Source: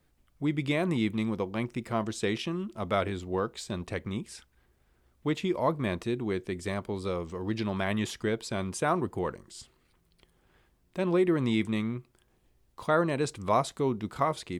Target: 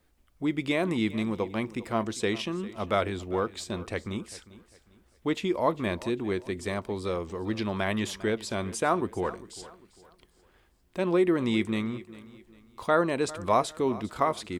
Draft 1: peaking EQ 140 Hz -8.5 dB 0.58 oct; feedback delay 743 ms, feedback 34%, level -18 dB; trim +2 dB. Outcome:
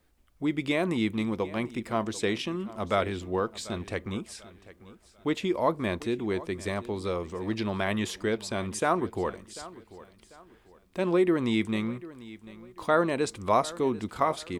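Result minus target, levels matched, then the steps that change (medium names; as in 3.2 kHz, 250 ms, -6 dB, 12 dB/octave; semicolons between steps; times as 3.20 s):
echo 343 ms late
change: feedback delay 400 ms, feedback 34%, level -18 dB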